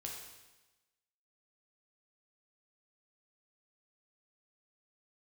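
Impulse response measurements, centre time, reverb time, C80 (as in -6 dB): 52 ms, 1.1 s, 5.0 dB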